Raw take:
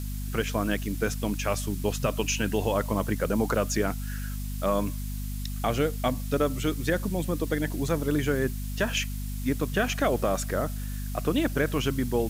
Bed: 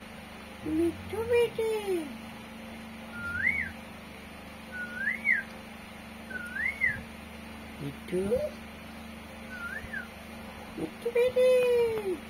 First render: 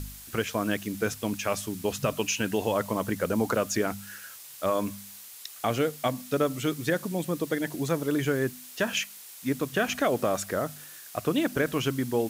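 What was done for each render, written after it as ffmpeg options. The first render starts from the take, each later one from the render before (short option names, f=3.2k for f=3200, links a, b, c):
-af "bandreject=f=50:t=h:w=4,bandreject=f=100:t=h:w=4,bandreject=f=150:t=h:w=4,bandreject=f=200:t=h:w=4,bandreject=f=250:t=h:w=4"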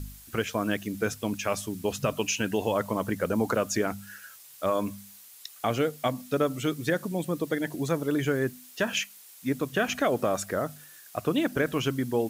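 -af "afftdn=nr=6:nf=-46"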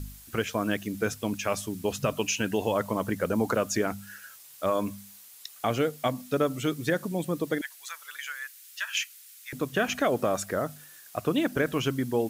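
-filter_complex "[0:a]asettb=1/sr,asplit=3[a][b][c];[a]atrim=end=7.614[d];[b]atrim=start=7.61:end=9.53,asetpts=PTS-STARTPTS,afade=t=in:d=0.004:c=qsin,afade=t=out:st=1.916:d=0.004:c=qsin,highpass=f=1.4k:w=0.5412,highpass=f=1.4k:w=1.3066[e];[c]atrim=start=9.526[f];[d][e]acrossfade=d=0.004:c1=hsin:c2=qsin[g];[g][f]acrossfade=d=0.004:c1=qsin:c2=hsin"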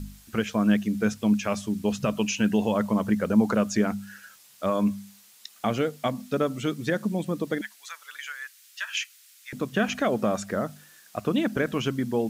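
-filter_complex "[0:a]acrossover=split=7900[a][b];[b]acompressor=threshold=-55dB:ratio=4:attack=1:release=60[c];[a][c]amix=inputs=2:normalize=0,equalizer=f=210:w=7.6:g=13"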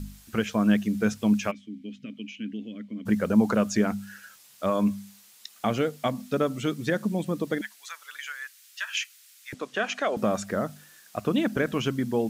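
-filter_complex "[0:a]asplit=3[a][b][c];[a]afade=t=out:st=1.5:d=0.02[d];[b]asplit=3[e][f][g];[e]bandpass=f=270:t=q:w=8,volume=0dB[h];[f]bandpass=f=2.29k:t=q:w=8,volume=-6dB[i];[g]bandpass=f=3.01k:t=q:w=8,volume=-9dB[j];[h][i][j]amix=inputs=3:normalize=0,afade=t=in:st=1.5:d=0.02,afade=t=out:st=3.05:d=0.02[k];[c]afade=t=in:st=3.05:d=0.02[l];[d][k][l]amix=inputs=3:normalize=0,asettb=1/sr,asplit=3[m][n][o];[m]atrim=end=9.544[p];[n]atrim=start=9.54:end=10.17,asetpts=PTS-STARTPTS,afade=t=in:d=0.004:c=qsin,afade=t=out:st=0.626:d=0.004:c=qsin,highpass=460,lowpass=7.8k[q];[o]atrim=start=10.166[r];[p][q]acrossfade=d=0.004:c1=hsin:c2=qsin[s];[s][r]acrossfade=d=0.004:c1=qsin:c2=hsin"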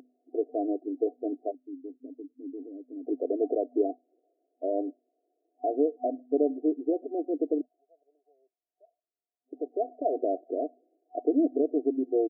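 -af "afftfilt=real='re*between(b*sr/4096,250,740)':imag='im*between(b*sr/4096,250,740)':win_size=4096:overlap=0.75,aecho=1:1:2.7:0.58"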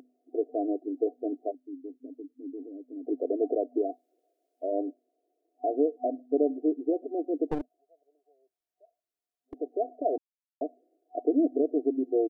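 -filter_complex "[0:a]asplit=3[a][b][c];[a]afade=t=out:st=3.78:d=0.02[d];[b]tiltshelf=f=710:g=-6.5,afade=t=in:st=3.78:d=0.02,afade=t=out:st=4.71:d=0.02[e];[c]afade=t=in:st=4.71:d=0.02[f];[d][e][f]amix=inputs=3:normalize=0,asettb=1/sr,asplit=3[g][h][i];[g]atrim=end=7.484[j];[h]atrim=start=7.48:end=9.54,asetpts=PTS-STARTPTS,afade=t=in:d=0.004:c=qsin,afade=t=out:st=2.056:d=0.004:c=qsin,aeval=exprs='clip(val(0),-1,0.015)':c=same[k];[i]atrim=start=9.536[l];[j][k]acrossfade=d=0.004:c1=hsin:c2=qsin[m];[m][l]acrossfade=d=0.004:c1=qsin:c2=hsin,asplit=3[n][o][p];[n]atrim=end=10.18,asetpts=PTS-STARTPTS,afade=t=out:st=10.176:d=0.004:c=hsin[q];[o]atrim=start=10.18:end=10.61,asetpts=PTS-STARTPTS,volume=0[r];[p]atrim=start=10.61,asetpts=PTS-STARTPTS,afade=t=in:d=0.004:c=hsin[s];[q][r][s]concat=n=3:v=0:a=1"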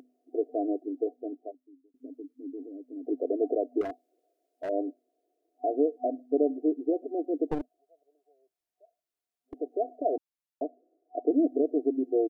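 -filter_complex "[0:a]asettb=1/sr,asplit=3[a][b][c];[a]atrim=end=3.814[d];[b]atrim=start=3.81:end=4.69,asetpts=PTS-STARTPTS,afade=t=in:d=0.004:c=qsin,afade=t=out:st=0.876:d=0.004:c=qsin,volume=30.5dB,asoftclip=hard,volume=-30.5dB[e];[c]atrim=start=4.686[f];[d][e]acrossfade=d=0.004:c1=hsin:c2=qsin[g];[g][f]acrossfade=d=0.004:c1=qsin:c2=hsin,asettb=1/sr,asplit=3[h][i][j];[h]atrim=end=10.644[k];[i]atrim=start=10.64:end=11.31,asetpts=PTS-STARTPTS,afade=t=in:d=0.004:c=qsin,afade=t=out:st=0.666:d=0.004:c=qsin,lowpass=f=1.5k:w=0.5412,lowpass=f=1.5k:w=1.3066[l];[j]atrim=start=11.306[m];[k][l]acrossfade=d=0.004:c1=hsin:c2=qsin[n];[n][m]acrossfade=d=0.004:c1=qsin:c2=hsin,asplit=2[o][p];[o]atrim=end=1.94,asetpts=PTS-STARTPTS,afade=t=out:st=0.78:d=1.16[q];[p]atrim=start=1.94,asetpts=PTS-STARTPTS,afade=t=in:d=0.004:c=hsin[r];[q][r]concat=n=2:v=0:a=1"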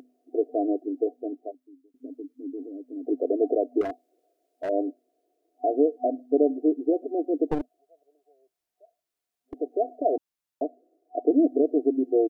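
-af "volume=4dB"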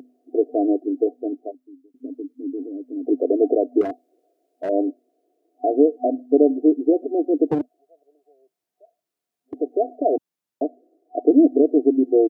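-af "highpass=130,equalizer=f=170:w=0.31:g=8"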